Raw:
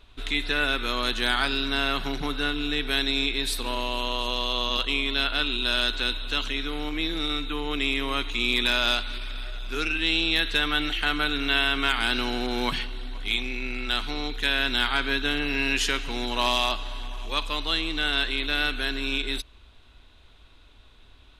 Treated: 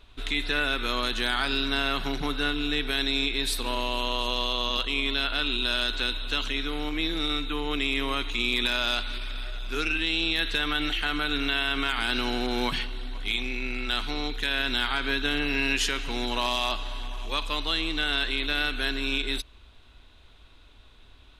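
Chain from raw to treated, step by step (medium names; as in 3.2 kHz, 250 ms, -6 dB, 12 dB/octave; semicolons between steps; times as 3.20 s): peak limiter -14.5 dBFS, peak gain reduction 5.5 dB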